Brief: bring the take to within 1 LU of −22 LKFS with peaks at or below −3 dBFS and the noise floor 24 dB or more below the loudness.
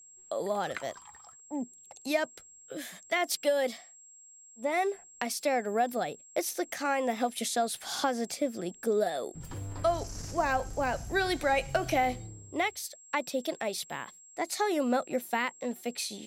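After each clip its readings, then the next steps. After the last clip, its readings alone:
interfering tone 7,600 Hz; level of the tone −52 dBFS; integrated loudness −31.5 LKFS; sample peak −14.0 dBFS; target loudness −22.0 LKFS
→ notch filter 7,600 Hz, Q 30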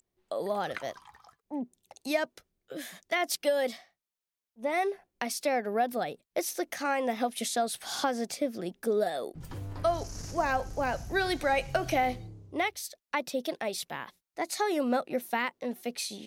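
interfering tone none found; integrated loudness −32.0 LKFS; sample peak −14.0 dBFS; target loudness −22.0 LKFS
→ level +10 dB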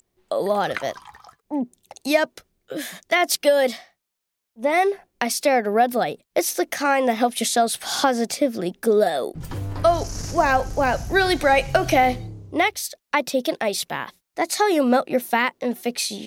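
integrated loudness −22.0 LKFS; sample peak −4.0 dBFS; background noise floor −81 dBFS

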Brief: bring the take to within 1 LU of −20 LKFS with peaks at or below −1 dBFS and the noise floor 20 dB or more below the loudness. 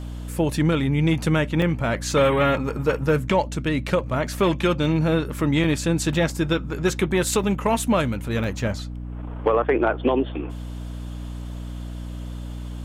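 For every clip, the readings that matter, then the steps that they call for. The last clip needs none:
number of dropouts 6; longest dropout 1.7 ms; mains hum 60 Hz; hum harmonics up to 300 Hz; level of the hum −30 dBFS; integrated loudness −22.5 LKFS; sample peak −8.0 dBFS; target loudness −20.0 LKFS
→ repair the gap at 0:01.62/0:04.27/0:05.64/0:06.30/0:07.43/0:08.44, 1.7 ms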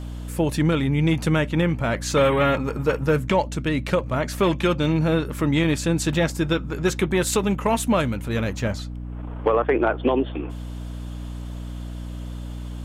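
number of dropouts 0; mains hum 60 Hz; hum harmonics up to 240 Hz; level of the hum −30 dBFS
→ hum removal 60 Hz, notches 4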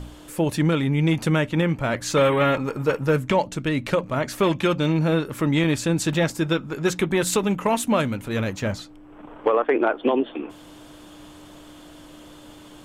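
mains hum none found; integrated loudness −22.5 LKFS; sample peak −8.5 dBFS; target loudness −20.0 LKFS
→ level +2.5 dB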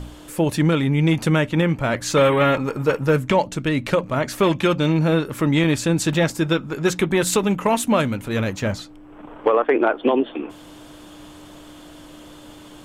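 integrated loudness −20.0 LKFS; sample peak −6.0 dBFS; background noise floor −43 dBFS

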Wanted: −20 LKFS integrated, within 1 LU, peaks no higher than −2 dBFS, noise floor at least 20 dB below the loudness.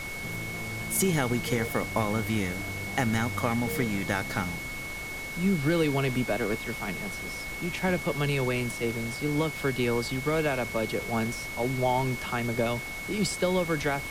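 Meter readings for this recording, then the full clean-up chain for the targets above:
interfering tone 2,200 Hz; level of the tone −36 dBFS; background noise floor −37 dBFS; target noise floor −49 dBFS; integrated loudness −29.0 LKFS; sample peak −11.5 dBFS; target loudness −20.0 LKFS
→ notch filter 2,200 Hz, Q 30
noise reduction from a noise print 12 dB
level +9 dB

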